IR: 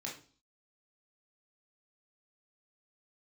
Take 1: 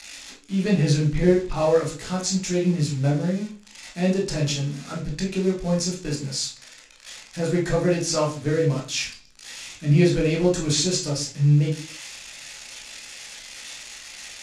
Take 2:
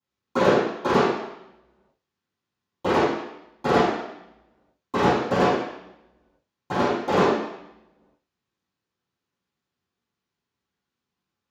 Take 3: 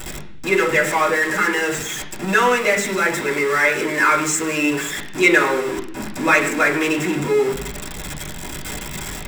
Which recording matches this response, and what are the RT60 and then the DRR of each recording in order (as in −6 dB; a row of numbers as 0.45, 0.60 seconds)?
1; 0.40, 0.85, 0.65 seconds; −3.5, −17.0, −4.5 decibels